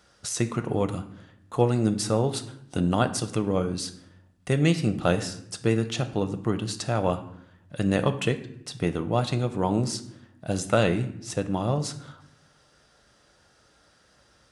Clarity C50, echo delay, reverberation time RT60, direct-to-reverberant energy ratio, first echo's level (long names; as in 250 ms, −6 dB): 13.5 dB, no echo audible, 0.70 s, 8.0 dB, no echo audible